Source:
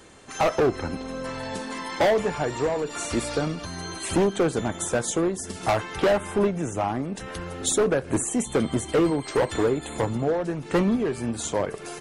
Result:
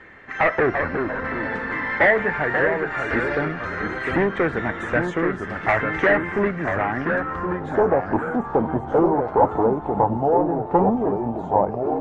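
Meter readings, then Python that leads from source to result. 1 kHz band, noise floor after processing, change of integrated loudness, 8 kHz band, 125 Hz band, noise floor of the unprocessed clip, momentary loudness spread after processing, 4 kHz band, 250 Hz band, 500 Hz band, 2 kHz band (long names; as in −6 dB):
+7.5 dB, −33 dBFS, +4.0 dB, below −25 dB, +1.5 dB, −39 dBFS, 7 LU, −8.5 dB, +2.0 dB, +3.0 dB, +11.5 dB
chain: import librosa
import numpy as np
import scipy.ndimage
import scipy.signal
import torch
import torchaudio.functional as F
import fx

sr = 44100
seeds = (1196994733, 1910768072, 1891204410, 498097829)

y = fx.filter_sweep_lowpass(x, sr, from_hz=1900.0, to_hz=850.0, start_s=6.92, end_s=7.73, q=6.3)
y = fx.echo_pitch(y, sr, ms=291, semitones=-2, count=3, db_per_echo=-6.0)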